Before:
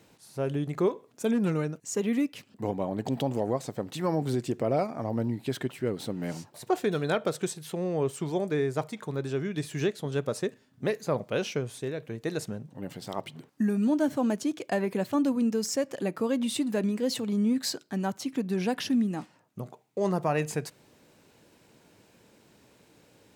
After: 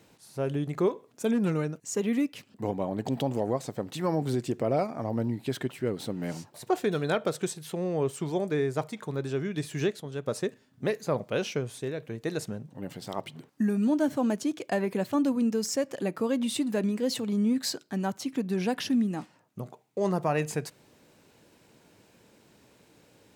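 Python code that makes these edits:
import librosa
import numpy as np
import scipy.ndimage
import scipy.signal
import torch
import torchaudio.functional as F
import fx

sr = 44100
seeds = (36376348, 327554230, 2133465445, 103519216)

y = fx.edit(x, sr, fx.clip_gain(start_s=10.0, length_s=0.27, db=-6.0), tone=tone)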